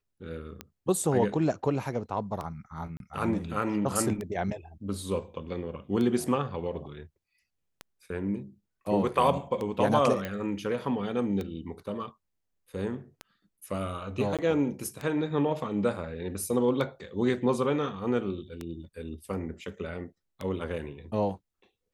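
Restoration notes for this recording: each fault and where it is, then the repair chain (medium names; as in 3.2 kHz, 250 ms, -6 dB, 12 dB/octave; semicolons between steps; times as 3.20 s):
tick 33 1/3 rpm -21 dBFS
2.97–3.00 s: dropout 32 ms
10.25 s: pop -19 dBFS
14.37–14.39 s: dropout 17 ms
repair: de-click; interpolate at 2.97 s, 32 ms; interpolate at 14.37 s, 17 ms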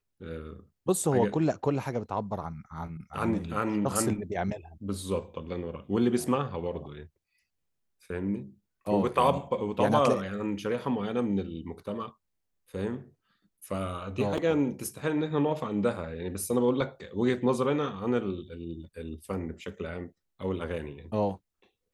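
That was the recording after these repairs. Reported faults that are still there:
nothing left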